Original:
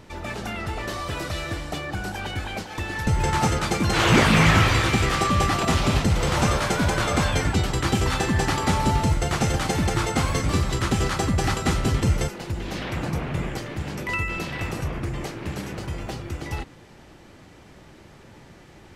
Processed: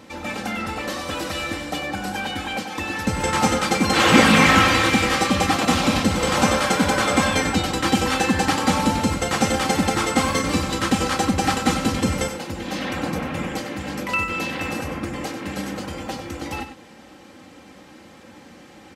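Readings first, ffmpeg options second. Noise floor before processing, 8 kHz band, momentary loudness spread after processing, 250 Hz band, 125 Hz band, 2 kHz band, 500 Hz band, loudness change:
-48 dBFS, +4.0 dB, 13 LU, +4.5 dB, -4.5 dB, +4.0 dB, +3.5 dB, +3.0 dB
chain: -af "highpass=120,aecho=1:1:3.8:0.63,aecho=1:1:96:0.316,volume=2.5dB"

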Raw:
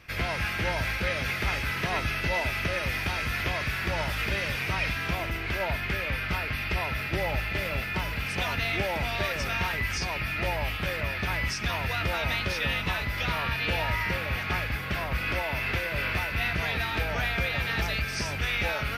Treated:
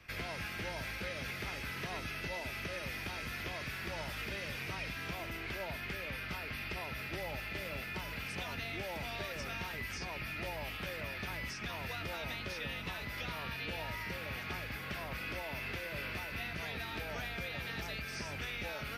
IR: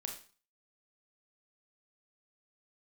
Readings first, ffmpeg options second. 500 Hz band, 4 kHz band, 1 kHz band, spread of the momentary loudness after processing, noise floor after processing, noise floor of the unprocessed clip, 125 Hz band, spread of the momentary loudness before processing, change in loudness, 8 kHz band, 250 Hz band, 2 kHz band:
-10.5 dB, -10.0 dB, -12.0 dB, 1 LU, -43 dBFS, -33 dBFS, -13.0 dB, 2 LU, -11.5 dB, -9.0 dB, -9.5 dB, -11.5 dB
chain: -filter_complex "[0:a]acrossover=split=170|490|3600[a][b][c][d];[a]acompressor=threshold=-42dB:ratio=4[e];[b]acompressor=threshold=-40dB:ratio=4[f];[c]acompressor=threshold=-37dB:ratio=4[g];[d]acompressor=threshold=-43dB:ratio=4[h];[e][f][g][h]amix=inputs=4:normalize=0,volume=-5.5dB"

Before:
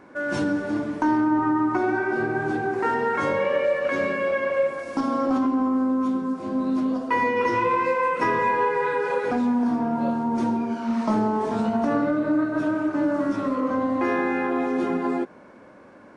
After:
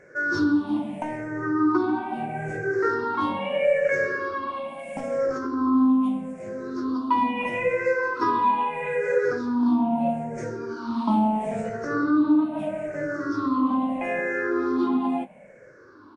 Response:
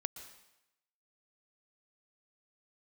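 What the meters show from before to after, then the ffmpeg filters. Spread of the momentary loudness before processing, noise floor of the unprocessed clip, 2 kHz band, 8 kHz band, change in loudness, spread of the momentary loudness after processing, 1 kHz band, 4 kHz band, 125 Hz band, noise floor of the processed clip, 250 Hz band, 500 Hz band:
4 LU, -48 dBFS, -1.0 dB, n/a, -1.0 dB, 10 LU, -1.5 dB, 0.0 dB, -1.5 dB, -49 dBFS, -1.0 dB, -1.5 dB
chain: -filter_complex "[0:a]afftfilt=real='re*pow(10,21/40*sin(2*PI*(0.53*log(max(b,1)*sr/1024/100)/log(2)-(-0.77)*(pts-256)/sr)))':imag='im*pow(10,21/40*sin(2*PI*(0.53*log(max(b,1)*sr/1024/100)/log(2)-(-0.77)*(pts-256)/sr)))':win_size=1024:overlap=0.75,asplit=2[a][b];[b]adelay=20,volume=-11dB[c];[a][c]amix=inputs=2:normalize=0,volume=-6.5dB"

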